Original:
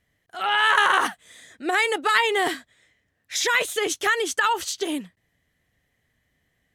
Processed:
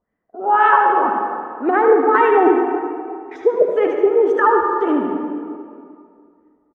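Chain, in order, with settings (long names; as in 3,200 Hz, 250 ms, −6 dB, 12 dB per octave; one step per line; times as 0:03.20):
spectral magnitudes quantised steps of 15 dB
noise gate −49 dBFS, range −9 dB
octave-band graphic EQ 125/250/500/1,000/2,000/4,000/8,000 Hz −9/+9/+6/+6/−10/−11/−5 dB
brickwall limiter −12 dBFS, peak gain reduction 5 dB
auto-filter low-pass sine 1.9 Hz 390–2,100 Hz
single-tap delay 75 ms −8 dB
on a send at −3 dB: convolution reverb RT60 2.3 s, pre-delay 68 ms
on the sum: level +2 dB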